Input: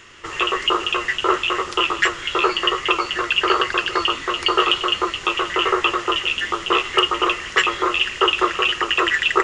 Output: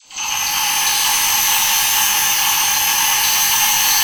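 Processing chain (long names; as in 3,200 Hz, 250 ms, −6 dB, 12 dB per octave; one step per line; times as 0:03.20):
hearing-aid frequency compression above 2,600 Hz 4 to 1
all-pass dispersion lows, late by 130 ms, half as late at 310 Hz
wrong playback speed 33 rpm record played at 78 rpm
reverb with rising layers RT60 2.6 s, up +12 semitones, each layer −2 dB, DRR −7 dB
level −5.5 dB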